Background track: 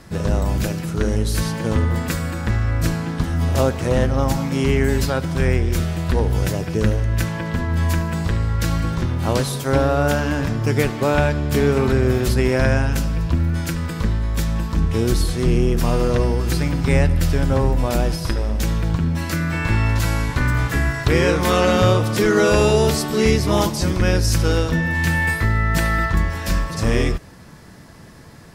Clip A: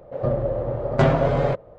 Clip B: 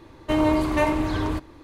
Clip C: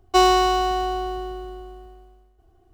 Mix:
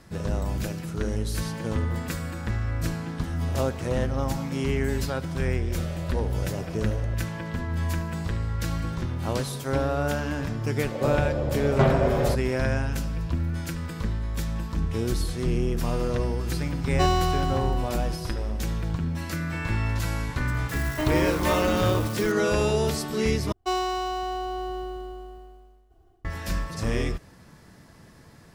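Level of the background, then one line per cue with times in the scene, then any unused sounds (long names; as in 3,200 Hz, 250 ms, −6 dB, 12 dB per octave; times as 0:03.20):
background track −8 dB
0:05.59: mix in A −12.5 dB + downward compressor, threshold −25 dBFS
0:10.80: mix in A −3.5 dB
0:16.85: mix in C −8.5 dB
0:20.69: mix in B −5.5 dB + spike at every zero crossing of −23 dBFS
0:23.52: overwrite with C −11 dB + automatic gain control gain up to 11 dB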